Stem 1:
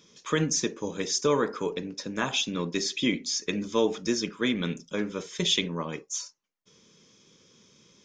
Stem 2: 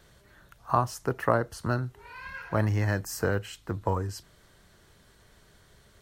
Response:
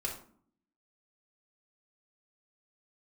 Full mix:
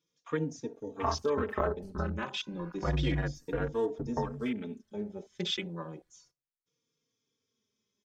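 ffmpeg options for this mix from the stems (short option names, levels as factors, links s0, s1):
-filter_complex "[0:a]volume=0.562,asplit=2[s0][s1];[s1]volume=0.0631[s2];[1:a]deesser=0.95,aeval=exprs='val(0)*sin(2*PI*44*n/s)':c=same,adelay=300,volume=0.944,asplit=2[s3][s4];[s4]volume=0.158[s5];[2:a]atrim=start_sample=2205[s6];[s2][s5]amix=inputs=2:normalize=0[s7];[s7][s6]afir=irnorm=-1:irlink=0[s8];[s0][s3][s8]amix=inputs=3:normalize=0,afwtdn=0.0158,asplit=2[s9][s10];[s10]adelay=3.7,afreqshift=-0.31[s11];[s9][s11]amix=inputs=2:normalize=1"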